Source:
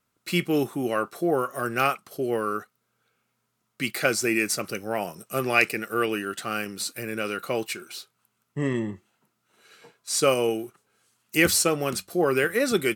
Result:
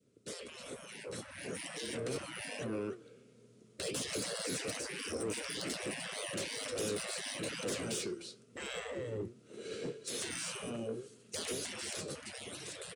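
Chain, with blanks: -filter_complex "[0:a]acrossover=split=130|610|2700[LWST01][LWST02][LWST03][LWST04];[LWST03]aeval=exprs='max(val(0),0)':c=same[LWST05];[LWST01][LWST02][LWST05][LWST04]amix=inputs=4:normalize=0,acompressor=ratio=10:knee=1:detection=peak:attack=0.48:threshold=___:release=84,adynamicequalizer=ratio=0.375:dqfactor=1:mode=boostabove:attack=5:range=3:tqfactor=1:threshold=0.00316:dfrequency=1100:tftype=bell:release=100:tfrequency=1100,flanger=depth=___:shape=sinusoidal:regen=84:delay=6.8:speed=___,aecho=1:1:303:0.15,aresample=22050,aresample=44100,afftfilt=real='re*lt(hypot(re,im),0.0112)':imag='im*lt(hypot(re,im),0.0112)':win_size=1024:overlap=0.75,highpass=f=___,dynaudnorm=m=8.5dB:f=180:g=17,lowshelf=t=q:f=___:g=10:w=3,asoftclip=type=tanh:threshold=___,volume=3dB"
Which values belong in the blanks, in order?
-25dB, 5, 1.2, 99, 630, -33dB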